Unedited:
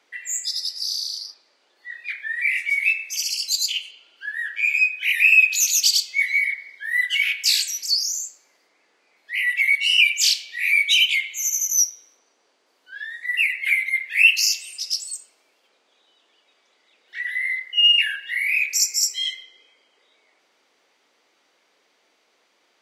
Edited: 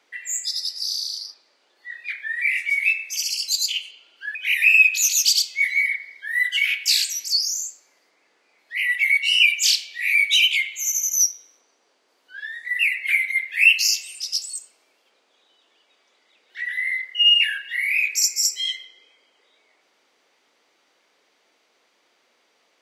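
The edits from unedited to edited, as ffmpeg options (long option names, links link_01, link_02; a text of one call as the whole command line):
ffmpeg -i in.wav -filter_complex "[0:a]asplit=2[link_01][link_02];[link_01]atrim=end=4.352[link_03];[link_02]atrim=start=4.928[link_04];[link_03][link_04]acrossfade=duration=0.004:curve1=hsin:curve2=hsin" out.wav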